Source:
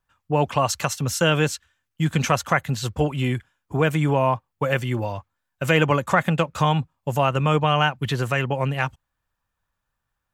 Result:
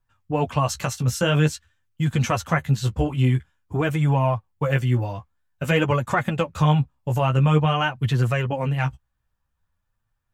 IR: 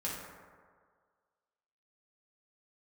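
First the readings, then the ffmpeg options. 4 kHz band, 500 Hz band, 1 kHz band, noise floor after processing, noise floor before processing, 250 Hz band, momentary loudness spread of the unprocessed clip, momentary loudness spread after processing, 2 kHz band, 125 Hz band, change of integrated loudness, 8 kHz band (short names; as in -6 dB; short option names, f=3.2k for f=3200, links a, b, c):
-3.0 dB, -2.5 dB, -3.0 dB, -75 dBFS, -80 dBFS, +0.5 dB, 8 LU, 7 LU, -3.0 dB, +3.0 dB, 0.0 dB, -3.5 dB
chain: -af "lowshelf=f=150:g=11.5,flanger=delay=8.3:depth=8:regen=14:speed=0.49:shape=sinusoidal"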